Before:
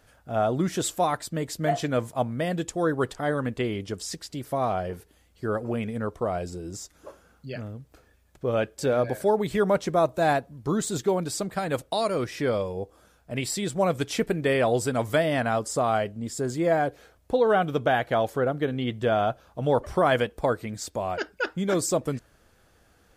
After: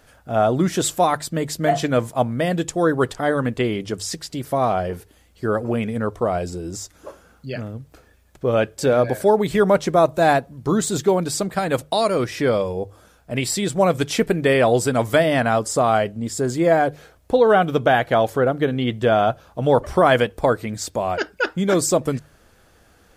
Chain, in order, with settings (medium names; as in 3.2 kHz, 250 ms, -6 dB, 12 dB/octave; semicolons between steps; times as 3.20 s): hum notches 50/100/150 Hz; trim +6.5 dB